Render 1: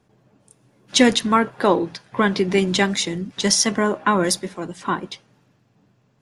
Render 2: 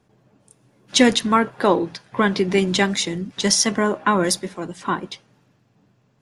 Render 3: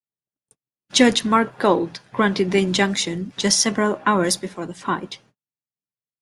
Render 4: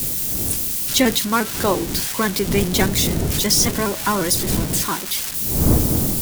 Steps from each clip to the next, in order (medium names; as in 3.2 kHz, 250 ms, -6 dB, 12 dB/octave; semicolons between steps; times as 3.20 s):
no audible change
gate -50 dBFS, range -45 dB
zero-crossing glitches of -11 dBFS; wind noise 230 Hz -22 dBFS; vibrato with a chosen wave saw up 5.7 Hz, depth 100 cents; trim -2.5 dB